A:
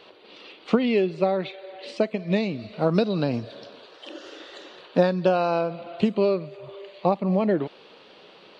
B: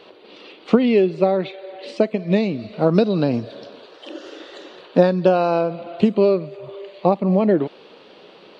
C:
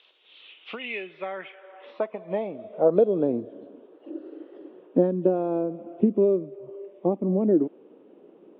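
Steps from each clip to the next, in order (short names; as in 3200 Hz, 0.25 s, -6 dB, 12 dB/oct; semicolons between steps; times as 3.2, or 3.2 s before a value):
bell 320 Hz +5 dB 2.4 oct; gain +1.5 dB
nonlinear frequency compression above 2400 Hz 1.5:1; band-pass sweep 4300 Hz -> 300 Hz, 0.19–3.63; gain +1 dB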